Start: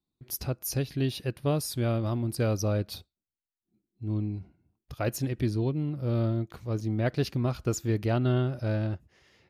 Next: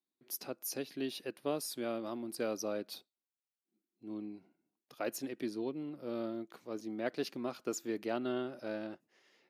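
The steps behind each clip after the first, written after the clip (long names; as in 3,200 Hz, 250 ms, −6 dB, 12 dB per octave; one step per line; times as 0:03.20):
high-pass filter 240 Hz 24 dB per octave
level −6 dB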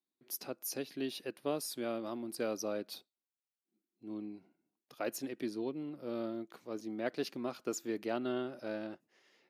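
no processing that can be heard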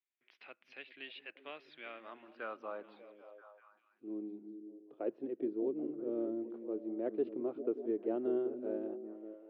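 band-pass filter sweep 2,200 Hz → 390 Hz, 0:01.82–0:04.02
elliptic band-pass filter 110–3,300 Hz, stop band 40 dB
echo through a band-pass that steps 196 ms, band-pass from 180 Hz, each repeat 0.7 octaves, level −5 dB
level +5 dB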